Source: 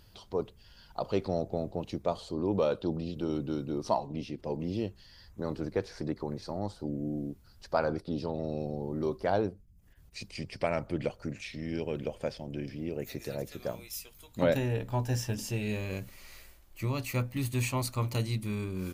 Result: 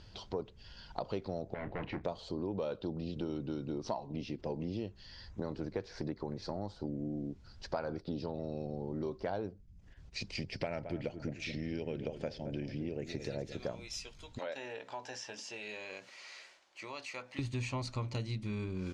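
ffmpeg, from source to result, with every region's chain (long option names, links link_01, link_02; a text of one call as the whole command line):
ffmpeg -i in.wav -filter_complex "[0:a]asettb=1/sr,asplit=3[link_01][link_02][link_03];[link_01]atrim=end=1.544[link_04];[link_02]atrim=start=1.54:end=2.04,asetpts=PTS-STARTPTS,afade=type=in:duration=0.004:curve=qsin,afade=type=out:start_time=0.496:duration=0.004:curve=qsin,asoftclip=type=hard:threshold=-36dB,lowpass=frequency=2000:width_type=q:width=3.3,asplit=2[link_05][link_06];[link_06]adelay=33,volume=-13dB[link_07];[link_05][link_07]amix=inputs=2:normalize=0,atrim=end_sample=22050[link_08];[link_03]atrim=start=2.036[link_09];[link_04][link_08]acrossfade=duration=0.004:curve1=hsin:curve2=qsin[link_10];[link_10][link_09]acrossfade=duration=0.004:curve1=qsin:curve2=hsin,asettb=1/sr,asplit=3[link_11][link_12][link_13];[link_11]atrim=end=10.404[link_14];[link_12]atrim=start=10.4:end=13.58,asetpts=PTS-STARTPTS,afade=type=in:duration=0.004:curve=qsin,afade=type=out:start_time=3.176:duration=0.004:curve=qsin,equalizer=frequency=1100:width_type=o:width=0.45:gain=-6.5,asplit=2[link_15][link_16];[link_16]adelay=219,lowpass=frequency=1200:poles=1,volume=-11.5dB,asplit=2[link_17][link_18];[link_18]adelay=219,lowpass=frequency=1200:poles=1,volume=0.33,asplit=2[link_19][link_20];[link_20]adelay=219,lowpass=frequency=1200:poles=1,volume=0.33[link_21];[link_15][link_17][link_19][link_21]amix=inputs=4:normalize=0,atrim=end_sample=140238[link_22];[link_13]atrim=start=13.576[link_23];[link_14][link_22]acrossfade=duration=0.004:curve1=hsin:curve2=qsin[link_24];[link_24][link_23]acrossfade=duration=0.004:curve1=qsin:curve2=hsin,asettb=1/sr,asplit=3[link_25][link_26][link_27];[link_25]atrim=end=14.384[link_28];[link_26]atrim=start=14.38:end=17.39,asetpts=PTS-STARTPTS,afade=type=in:duration=0.004:curve=qsin,afade=type=out:start_time=3.006:duration=0.004:curve=qsin,highpass=610,acompressor=threshold=-48dB:ratio=2:attack=3.2:release=140:knee=1:detection=peak[link_29];[link_27]atrim=start=17.386[link_30];[link_28][link_29]acrossfade=duration=0.004:curve1=hsin:curve2=qsin[link_31];[link_31][link_30]acrossfade=duration=0.004:curve1=qsin:curve2=hsin,lowpass=frequency=6300:width=0.5412,lowpass=frequency=6300:width=1.3066,bandreject=frequency=1200:width=18,acompressor=threshold=-39dB:ratio=4,volume=3.5dB" out.wav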